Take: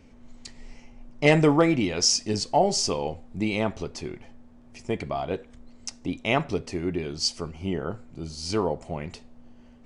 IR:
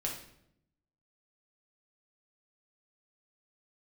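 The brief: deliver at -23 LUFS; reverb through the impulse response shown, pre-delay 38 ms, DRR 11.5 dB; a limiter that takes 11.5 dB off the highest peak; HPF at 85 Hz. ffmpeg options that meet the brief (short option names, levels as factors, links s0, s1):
-filter_complex "[0:a]highpass=85,alimiter=limit=0.15:level=0:latency=1,asplit=2[s0][s1];[1:a]atrim=start_sample=2205,adelay=38[s2];[s1][s2]afir=irnorm=-1:irlink=0,volume=0.2[s3];[s0][s3]amix=inputs=2:normalize=0,volume=2"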